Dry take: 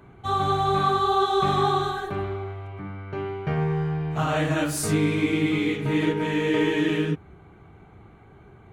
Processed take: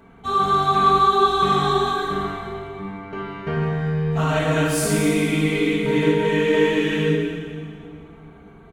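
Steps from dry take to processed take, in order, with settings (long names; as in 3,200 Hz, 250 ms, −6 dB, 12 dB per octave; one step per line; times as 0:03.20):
mains-hum notches 50/100/150 Hz
comb filter 4.4 ms, depth 64%
convolution reverb RT60 2.2 s, pre-delay 16 ms, DRR 0 dB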